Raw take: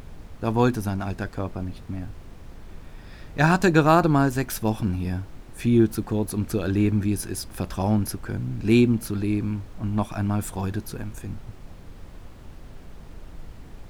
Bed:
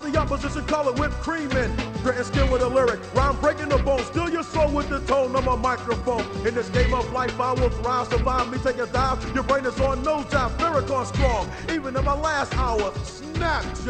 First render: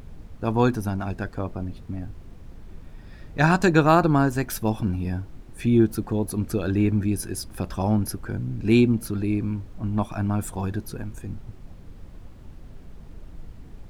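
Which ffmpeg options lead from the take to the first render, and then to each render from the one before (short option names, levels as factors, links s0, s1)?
-af "afftdn=nr=6:nf=-44"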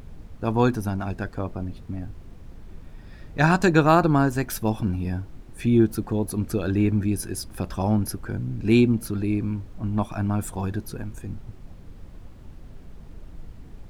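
-af anull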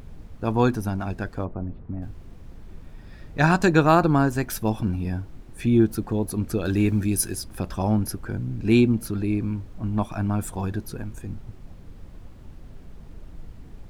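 -filter_complex "[0:a]asplit=3[s0][s1][s2];[s0]afade=t=out:st=1.44:d=0.02[s3];[s1]lowpass=1300,afade=t=in:st=1.44:d=0.02,afade=t=out:st=2.01:d=0.02[s4];[s2]afade=t=in:st=2.01:d=0.02[s5];[s3][s4][s5]amix=inputs=3:normalize=0,asettb=1/sr,asplit=3[s6][s7][s8];[s6]atrim=end=6.654[s9];[s7]atrim=start=6.65:end=7.35,asetpts=PTS-STARTPTS,afade=t=in:d=0.004:c=qsin,afade=t=out:st=0.696:d=0.004:c=qsin,highshelf=f=3400:g=10.5[s10];[s8]atrim=start=7.346[s11];[s9][s10]acrossfade=d=0.004:c1=hsin:c2=qsin[s12];[s12][s11]acrossfade=d=0.004:c1=qsin:c2=hsin"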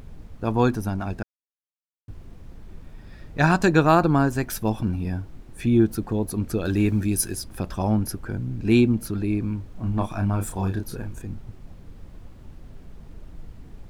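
-filter_complex "[0:a]asettb=1/sr,asplit=3[s0][s1][s2];[s0]atrim=end=9.724[s3];[s1]atrim=start=9.72:end=11.22,asetpts=PTS-STARTPTS,afade=t=in:d=0.004:c=qsin,afade=t=out:st=1.496:d=0.004:c=qsin,asplit=2[s4][s5];[s5]adelay=31,volume=0.531[s6];[s4][s6]amix=inputs=2:normalize=0,atrim=end_sample=66150[s7];[s2]atrim=start=11.216[s8];[s3][s7]acrossfade=d=0.004:c1=hsin:c2=qsin[s9];[s9][s8]acrossfade=d=0.004:c1=qsin:c2=hsin,asplit=3[s10][s11][s12];[s10]atrim=end=1.23,asetpts=PTS-STARTPTS,afade=t=out:st=1.226:d=0.004:c=hsin[s13];[s11]atrim=start=1.23:end=2.08,asetpts=PTS-STARTPTS,volume=0[s14];[s12]atrim=start=2.08,asetpts=PTS-STARTPTS,afade=t=in:d=0.004:c=hsin[s15];[s13][s14][s15]concat=n=3:v=0:a=1"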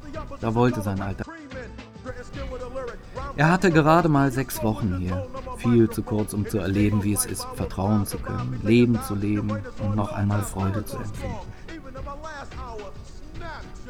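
-filter_complex "[1:a]volume=0.211[s0];[0:a][s0]amix=inputs=2:normalize=0"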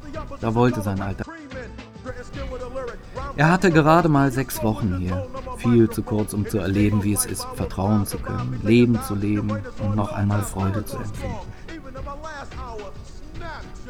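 -af "volume=1.26"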